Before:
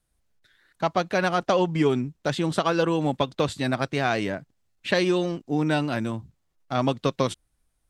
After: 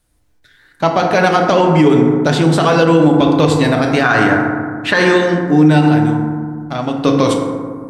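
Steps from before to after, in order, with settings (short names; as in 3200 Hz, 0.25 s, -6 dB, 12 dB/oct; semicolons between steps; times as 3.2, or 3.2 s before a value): 4.03–5.13 band shelf 1300 Hz +8.5 dB 1.2 oct; 5.88–6.98 compressor 2:1, threshold -36 dBFS, peak gain reduction 10 dB; FDN reverb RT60 1.8 s, low-frequency decay 1.4×, high-frequency decay 0.35×, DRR 1.5 dB; maximiser +11.5 dB; gain -1 dB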